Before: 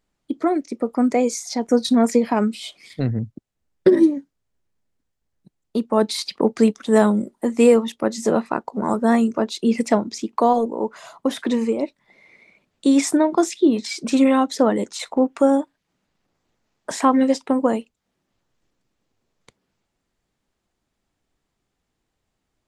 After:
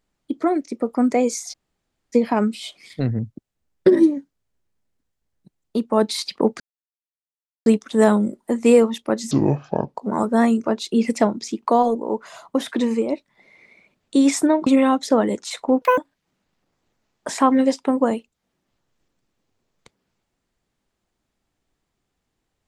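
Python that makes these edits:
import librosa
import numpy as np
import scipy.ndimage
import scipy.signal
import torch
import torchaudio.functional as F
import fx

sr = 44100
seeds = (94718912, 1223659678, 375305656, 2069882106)

y = fx.edit(x, sr, fx.room_tone_fill(start_s=1.52, length_s=0.62, crossfade_s=0.04),
    fx.insert_silence(at_s=6.6, length_s=1.06),
    fx.speed_span(start_s=8.25, length_s=0.4, speed=0.63),
    fx.cut(start_s=13.37, length_s=0.78),
    fx.speed_span(start_s=15.3, length_s=0.3, speed=1.84), tone=tone)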